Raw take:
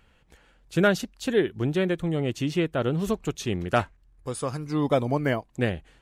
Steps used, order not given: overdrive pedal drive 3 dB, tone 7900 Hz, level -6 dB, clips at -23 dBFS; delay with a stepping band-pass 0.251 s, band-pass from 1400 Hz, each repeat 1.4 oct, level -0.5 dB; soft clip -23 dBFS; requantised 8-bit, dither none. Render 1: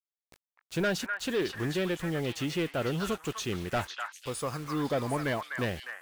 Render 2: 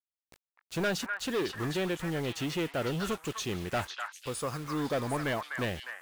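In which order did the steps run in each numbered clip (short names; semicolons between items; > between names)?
overdrive pedal > requantised > soft clip > delay with a stepping band-pass; soft clip > overdrive pedal > requantised > delay with a stepping band-pass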